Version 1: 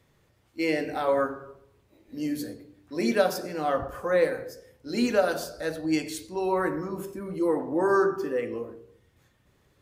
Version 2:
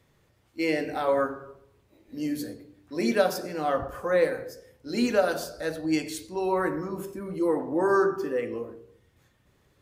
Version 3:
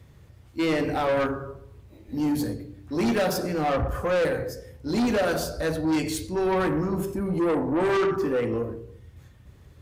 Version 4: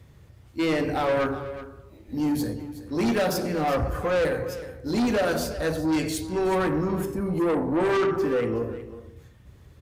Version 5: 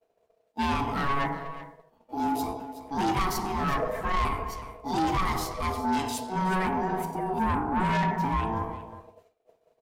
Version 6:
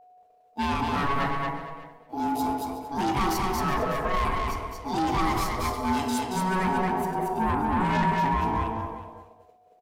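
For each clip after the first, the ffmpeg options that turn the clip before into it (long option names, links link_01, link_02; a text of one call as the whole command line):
ffmpeg -i in.wav -af anull out.wav
ffmpeg -i in.wav -af "equalizer=frequency=71:width=0.55:gain=14.5,asoftclip=type=tanh:threshold=-25.5dB,volume=5.5dB" out.wav
ffmpeg -i in.wav -af "aecho=1:1:370:0.188" out.wav
ffmpeg -i in.wav -af "agate=range=-33dB:threshold=-39dB:ratio=3:detection=peak,aeval=exprs='val(0)*sin(2*PI*560*n/s)':channel_layout=same" out.wav
ffmpeg -i in.wav -filter_complex "[0:a]aeval=exprs='val(0)+0.00251*sin(2*PI*730*n/s)':channel_layout=same,asplit=2[link_01][link_02];[link_02]aecho=0:1:228|456|684:0.708|0.127|0.0229[link_03];[link_01][link_03]amix=inputs=2:normalize=0" out.wav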